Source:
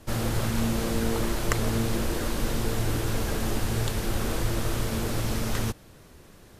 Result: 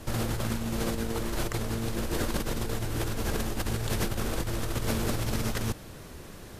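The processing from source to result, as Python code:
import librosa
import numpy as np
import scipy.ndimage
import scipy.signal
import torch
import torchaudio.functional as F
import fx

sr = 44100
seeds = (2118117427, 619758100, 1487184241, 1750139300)

y = fx.over_compress(x, sr, threshold_db=-31.0, ratio=-1.0)
y = F.gain(torch.from_numpy(y), 1.5).numpy()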